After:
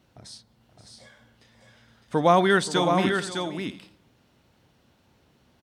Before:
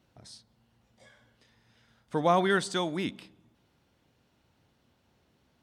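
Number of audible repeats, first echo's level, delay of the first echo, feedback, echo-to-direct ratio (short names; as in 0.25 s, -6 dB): 3, -15.0 dB, 0.527 s, no steady repeat, -5.0 dB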